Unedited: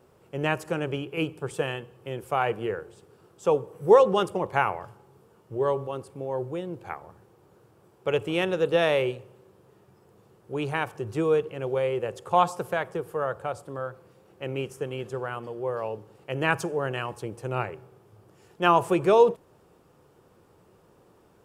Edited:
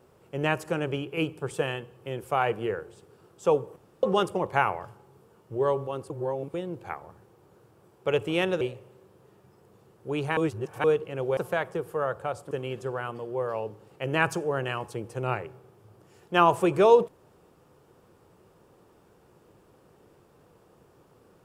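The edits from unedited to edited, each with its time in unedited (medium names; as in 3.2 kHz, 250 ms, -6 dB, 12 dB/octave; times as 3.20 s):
3.76–4.03 s: room tone
6.10–6.54 s: reverse
8.61–9.05 s: delete
10.81–11.28 s: reverse
11.81–12.57 s: delete
13.71–14.79 s: delete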